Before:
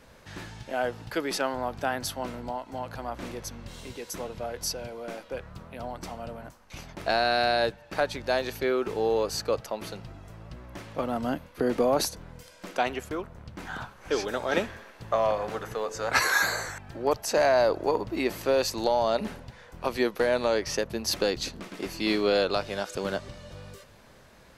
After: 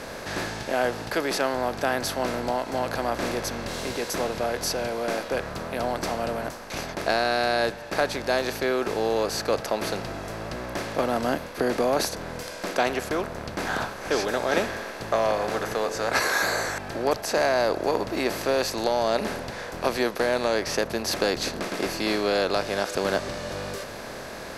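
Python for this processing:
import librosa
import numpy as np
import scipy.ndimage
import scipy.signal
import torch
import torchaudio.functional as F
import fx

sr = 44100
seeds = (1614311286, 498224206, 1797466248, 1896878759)

p1 = fx.bin_compress(x, sr, power=0.6)
p2 = fx.rider(p1, sr, range_db=4, speed_s=0.5)
p3 = p1 + (p2 * 10.0 ** (1.0 / 20.0))
y = p3 * 10.0 ** (-8.0 / 20.0)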